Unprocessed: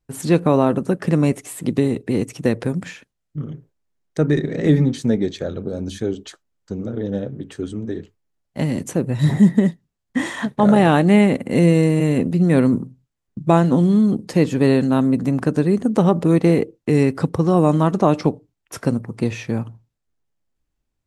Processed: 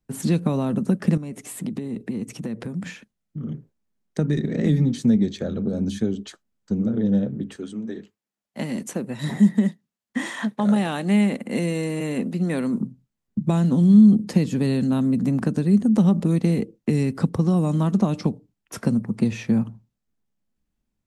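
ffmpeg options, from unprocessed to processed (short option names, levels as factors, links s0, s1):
-filter_complex "[0:a]asettb=1/sr,asplit=3[s0][s1][s2];[s0]atrim=end=1.174[s3];[s1]atrim=start=1.17:end=3.49,asetpts=PTS-STARTPTS,afade=t=in:d=0.004:c=qsin,afade=t=out:st=2.316:d=0.004:c=qsin,acompressor=threshold=0.0398:ratio=5:attack=3.2:release=140:knee=1:detection=peak[s4];[s2]atrim=start=3.486[s5];[s3][s4]acrossfade=d=0.004:c1=hsin:c2=qsin[s6];[s6][s5]acrossfade=d=0.004:c1=qsin:c2=hsin,asettb=1/sr,asplit=3[s7][s8][s9];[s7]atrim=end=7.564[s10];[s8]atrim=start=7.56:end=12.81,asetpts=PTS-STARTPTS,afade=t=in:d=0.004:c=qsin,afade=t=out:st=5.246:d=0.004:c=qsin,highpass=f=610:p=1[s11];[s9]atrim=start=12.806[s12];[s10][s11]acrossfade=d=0.004:c1=hsin:c2=qsin[s13];[s13][s12]acrossfade=d=0.004:c1=qsin:c2=hsin,acrossover=split=150|3000[s14][s15][s16];[s15]acompressor=threshold=0.0794:ratio=6[s17];[s14][s17][s16]amix=inputs=3:normalize=0,equalizer=f=210:w=3:g=12.5,volume=0.75"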